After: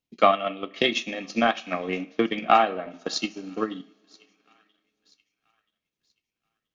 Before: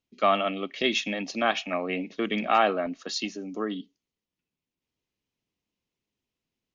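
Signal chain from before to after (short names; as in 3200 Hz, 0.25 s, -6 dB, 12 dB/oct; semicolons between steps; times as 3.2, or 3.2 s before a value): thin delay 0.98 s, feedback 31%, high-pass 1900 Hz, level -22 dB; two-slope reverb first 0.43 s, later 2.7 s, from -20 dB, DRR 6 dB; transient shaper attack +10 dB, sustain -6 dB; gain -2.5 dB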